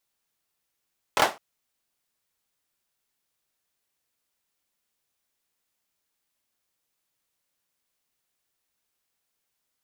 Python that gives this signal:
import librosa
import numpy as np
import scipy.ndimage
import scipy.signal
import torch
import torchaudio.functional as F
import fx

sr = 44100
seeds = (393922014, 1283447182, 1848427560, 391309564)

y = fx.drum_clap(sr, seeds[0], length_s=0.21, bursts=3, spacing_ms=25, hz=710.0, decay_s=0.24)